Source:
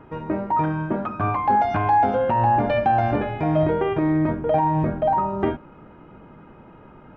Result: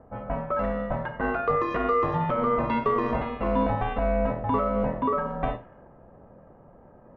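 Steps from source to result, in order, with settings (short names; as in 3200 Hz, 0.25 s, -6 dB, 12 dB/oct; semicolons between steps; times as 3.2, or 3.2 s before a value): Schroeder reverb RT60 0.34 s, combs from 26 ms, DRR 11.5 dB; ring modulator 360 Hz; low-pass opened by the level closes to 780 Hz, open at -19.5 dBFS; gain -2 dB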